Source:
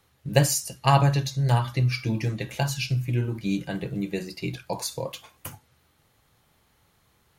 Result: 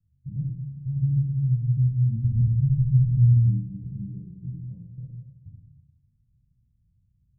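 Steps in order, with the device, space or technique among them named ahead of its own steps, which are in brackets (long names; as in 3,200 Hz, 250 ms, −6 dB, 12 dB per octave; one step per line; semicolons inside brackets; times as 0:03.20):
0:02.24–0:03.37: RIAA equalisation playback
club heard from the street (brickwall limiter −14.5 dBFS, peak gain reduction 9.5 dB; low-pass filter 150 Hz 24 dB per octave; convolution reverb RT60 0.95 s, pre-delay 29 ms, DRR −2 dB)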